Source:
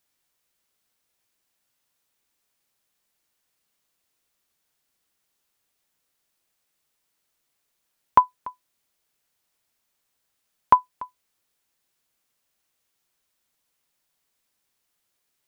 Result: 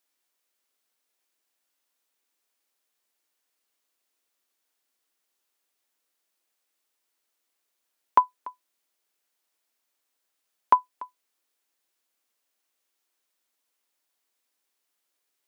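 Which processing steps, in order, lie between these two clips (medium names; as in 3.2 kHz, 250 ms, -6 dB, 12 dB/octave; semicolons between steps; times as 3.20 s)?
high-pass 250 Hz 24 dB/octave; trim -3 dB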